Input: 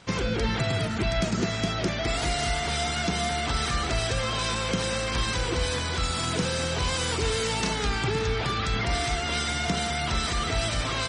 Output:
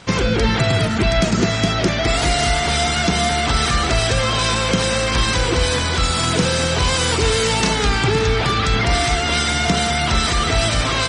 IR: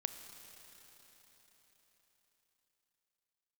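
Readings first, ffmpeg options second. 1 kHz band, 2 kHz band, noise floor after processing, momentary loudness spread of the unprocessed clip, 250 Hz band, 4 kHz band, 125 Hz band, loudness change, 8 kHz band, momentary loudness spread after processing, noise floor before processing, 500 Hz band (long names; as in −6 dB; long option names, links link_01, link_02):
+9.5 dB, +9.5 dB, −20 dBFS, 1 LU, +9.5 dB, +9.5 dB, +9.5 dB, +9.5 dB, +9.5 dB, 1 LU, −29 dBFS, +9.5 dB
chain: -filter_complex "[0:a]asplit=2[link_01][link_02];[1:a]atrim=start_sample=2205,asetrate=26460,aresample=44100[link_03];[link_02][link_03]afir=irnorm=-1:irlink=0,volume=-11.5dB[link_04];[link_01][link_04]amix=inputs=2:normalize=0,volume=7dB"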